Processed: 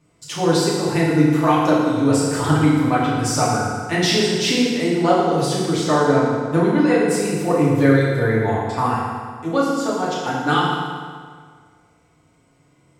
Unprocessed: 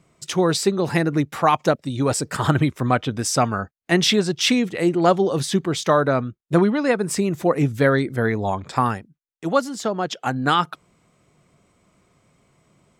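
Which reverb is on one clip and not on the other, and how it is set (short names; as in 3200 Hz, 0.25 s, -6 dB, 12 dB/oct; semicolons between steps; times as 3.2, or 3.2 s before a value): FDN reverb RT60 1.8 s, low-frequency decay 1×, high-frequency decay 0.8×, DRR -7.5 dB; gain -6.5 dB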